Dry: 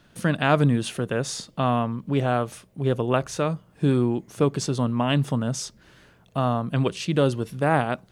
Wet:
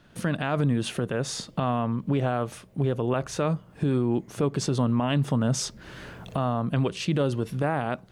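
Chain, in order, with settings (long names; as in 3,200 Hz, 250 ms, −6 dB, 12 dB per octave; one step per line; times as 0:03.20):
camcorder AGC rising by 15 dB per second
high-shelf EQ 3,900 Hz −5.5 dB
brickwall limiter −16 dBFS, peak gain reduction 9 dB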